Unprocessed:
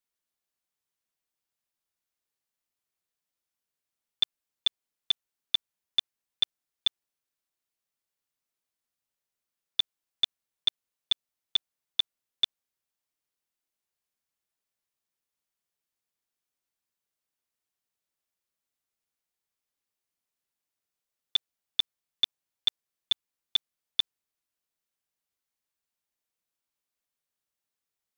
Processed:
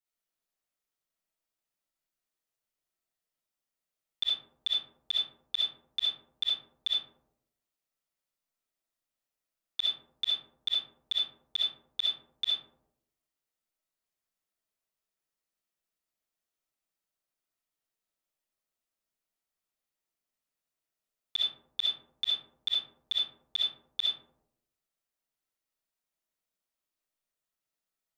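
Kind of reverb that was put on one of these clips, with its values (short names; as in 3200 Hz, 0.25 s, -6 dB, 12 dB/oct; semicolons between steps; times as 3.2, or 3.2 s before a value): digital reverb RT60 0.79 s, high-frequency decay 0.3×, pre-delay 20 ms, DRR -6 dB; gain -7.5 dB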